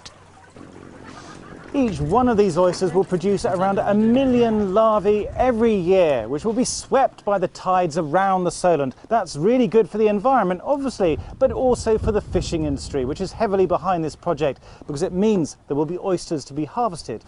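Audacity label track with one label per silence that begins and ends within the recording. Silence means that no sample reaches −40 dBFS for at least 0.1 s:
15.540000	15.690000	silence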